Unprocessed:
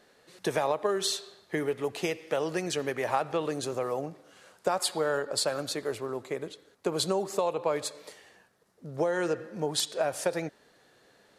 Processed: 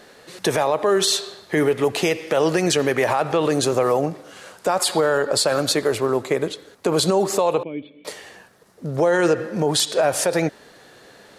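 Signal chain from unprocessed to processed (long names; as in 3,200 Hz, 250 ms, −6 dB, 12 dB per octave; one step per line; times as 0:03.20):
0:07.63–0:08.05: formant resonators in series i
boost into a limiter +22.5 dB
level −8.5 dB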